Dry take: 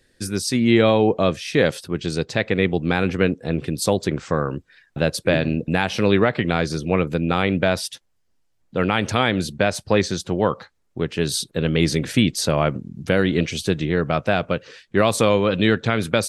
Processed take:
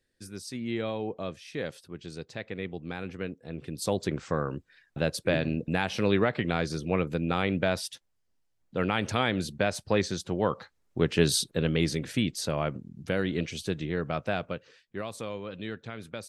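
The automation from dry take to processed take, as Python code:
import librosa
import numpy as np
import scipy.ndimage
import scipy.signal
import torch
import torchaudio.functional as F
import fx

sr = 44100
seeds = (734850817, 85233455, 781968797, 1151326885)

y = fx.gain(x, sr, db=fx.line((3.47, -16.5), (3.99, -7.5), (10.42, -7.5), (11.16, 0.0), (12.02, -10.0), (14.36, -10.0), (15.08, -19.5)))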